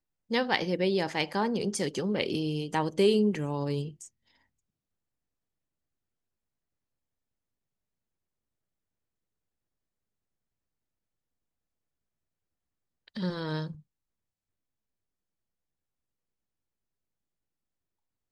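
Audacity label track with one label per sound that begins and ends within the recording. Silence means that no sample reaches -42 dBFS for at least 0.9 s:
13.080000	13.750000	sound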